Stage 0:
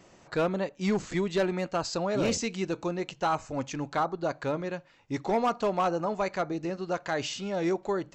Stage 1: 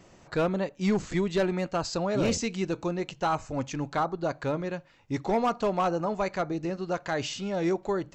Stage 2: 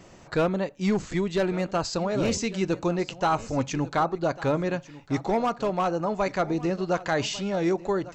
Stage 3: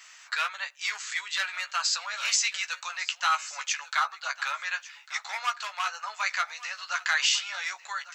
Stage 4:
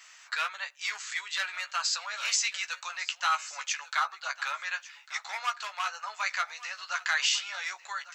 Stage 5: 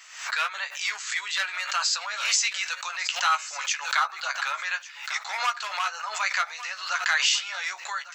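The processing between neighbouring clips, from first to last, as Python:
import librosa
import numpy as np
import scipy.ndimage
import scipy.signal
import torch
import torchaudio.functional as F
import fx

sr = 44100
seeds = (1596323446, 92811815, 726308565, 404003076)

y1 = fx.low_shelf(x, sr, hz=140.0, db=7.0)
y2 = fx.rider(y1, sr, range_db=4, speed_s=0.5)
y2 = y2 + 10.0 ** (-18.0 / 20.0) * np.pad(y2, (int(1148 * sr / 1000.0), 0))[:len(y2)]
y2 = y2 * librosa.db_to_amplitude(2.5)
y3 = scipy.signal.sosfilt(scipy.signal.cheby2(4, 70, 310.0, 'highpass', fs=sr, output='sos'), y2)
y3 = fx.doubler(y3, sr, ms=14.0, db=-7)
y3 = y3 * librosa.db_to_amplitude(7.0)
y4 = fx.low_shelf(y3, sr, hz=340.0, db=7.0)
y4 = y4 * librosa.db_to_amplitude(-2.5)
y5 = fx.pre_swell(y4, sr, db_per_s=89.0)
y5 = y5 * librosa.db_to_amplitude(4.0)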